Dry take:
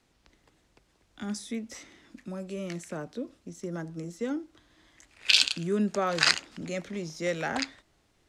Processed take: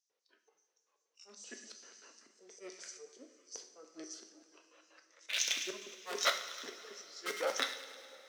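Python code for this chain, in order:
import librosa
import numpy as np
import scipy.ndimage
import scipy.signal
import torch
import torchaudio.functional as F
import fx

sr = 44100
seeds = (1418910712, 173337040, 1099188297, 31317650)

p1 = fx.filter_lfo_highpass(x, sr, shape='square', hz=5.2, low_hz=570.0, high_hz=7500.0, q=4.9)
p2 = (np.mod(10.0 ** (16.0 / 20.0) * p1 + 1.0, 2.0) - 1.0) / 10.0 ** (16.0 / 20.0)
p3 = p1 + (p2 * librosa.db_to_amplitude(-7.0))
p4 = fx.formant_shift(p3, sr, semitones=-4)
p5 = fx.low_shelf_res(p4, sr, hz=150.0, db=-8.0, q=3.0)
p6 = p5 + fx.echo_wet_highpass(p5, sr, ms=104, feedback_pct=61, hz=1600.0, wet_db=-13.5, dry=0)
p7 = fx.noise_reduce_blind(p6, sr, reduce_db=15)
p8 = fx.auto_swell(p7, sr, attack_ms=313.0)
p9 = fx.weighting(p8, sr, curve='A')
p10 = fx.rev_double_slope(p9, sr, seeds[0], early_s=0.53, late_s=4.4, knee_db=-18, drr_db=4.5)
y = p10 * librosa.db_to_amplitude(-6.0)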